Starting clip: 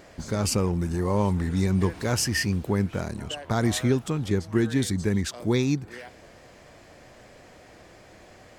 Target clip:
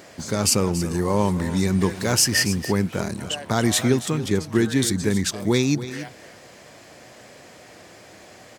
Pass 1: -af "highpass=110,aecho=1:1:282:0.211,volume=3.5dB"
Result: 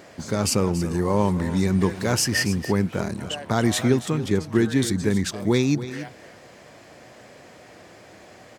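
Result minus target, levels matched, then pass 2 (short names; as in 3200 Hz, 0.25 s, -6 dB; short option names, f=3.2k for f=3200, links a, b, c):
8000 Hz band -4.0 dB
-af "highpass=110,highshelf=f=3.4k:g=6.5,aecho=1:1:282:0.211,volume=3.5dB"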